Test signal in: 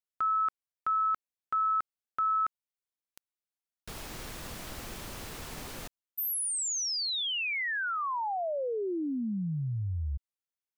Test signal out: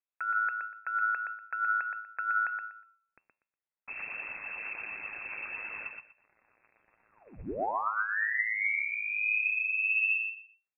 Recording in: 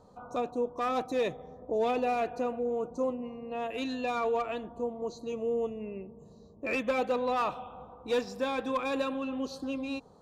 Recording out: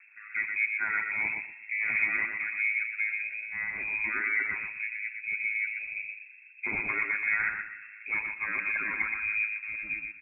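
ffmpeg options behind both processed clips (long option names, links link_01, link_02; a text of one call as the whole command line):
ffmpeg -i in.wav -filter_complex "[0:a]bandreject=frequency=186.1:width_type=h:width=4,bandreject=frequency=372.2:width_type=h:width=4,bandreject=frequency=558.3:width_type=h:width=4,bandreject=frequency=744.4:width_type=h:width=4,bandreject=frequency=930.5:width_type=h:width=4,bandreject=frequency=1116.6:width_type=h:width=4,bandreject=frequency=1302.7:width_type=h:width=4,bandreject=frequency=1488.8:width_type=h:width=4,bandreject=frequency=1674.9:width_type=h:width=4,bandreject=frequency=1861:width_type=h:width=4,bandreject=frequency=2047.1:width_type=h:width=4,bandreject=frequency=2233.2:width_type=h:width=4,bandreject=frequency=2419.3:width_type=h:width=4,bandreject=frequency=2605.4:width_type=h:width=4,bandreject=frequency=2791.5:width_type=h:width=4,bandreject=frequency=2977.6:width_type=h:width=4,bandreject=frequency=3163.7:width_type=h:width=4,bandreject=frequency=3349.8:width_type=h:width=4,bandreject=frequency=3535.9:width_type=h:width=4,bandreject=frequency=3722:width_type=h:width=4,bandreject=frequency=3908.1:width_type=h:width=4,bandreject=frequency=4094.2:width_type=h:width=4,bandreject=frequency=4280.3:width_type=h:width=4,bandreject=frequency=4466.4:width_type=h:width=4,bandreject=frequency=4652.5:width_type=h:width=4,bandreject=frequency=4838.6:width_type=h:width=4,bandreject=frequency=5024.7:width_type=h:width=4,bandreject=frequency=5210.8:width_type=h:width=4,bandreject=frequency=5396.9:width_type=h:width=4,bandreject=frequency=5583:width_type=h:width=4,bandreject=frequency=5769.1:width_type=h:width=4,bandreject=frequency=5955.2:width_type=h:width=4,bandreject=frequency=6141.3:width_type=h:width=4,bandreject=frequency=6327.4:width_type=h:width=4,bandreject=frequency=6513.5:width_type=h:width=4,bandreject=frequency=6699.6:width_type=h:width=4,bandreject=frequency=6885.7:width_type=h:width=4,bandreject=frequency=7071.8:width_type=h:width=4,aphaser=in_gain=1:out_gain=1:delay=1.7:decay=0.41:speed=1.5:type=triangular,aeval=exprs='val(0)*sin(2*PI*53*n/s)':channel_layout=same,asplit=2[link_01][link_02];[link_02]aecho=0:1:121|242|363:0.562|0.118|0.0248[link_03];[link_01][link_03]amix=inputs=2:normalize=0,lowpass=frequency=2300:width_type=q:width=0.5098,lowpass=frequency=2300:width_type=q:width=0.6013,lowpass=frequency=2300:width_type=q:width=0.9,lowpass=frequency=2300:width_type=q:width=2.563,afreqshift=-2700,volume=2dB" out.wav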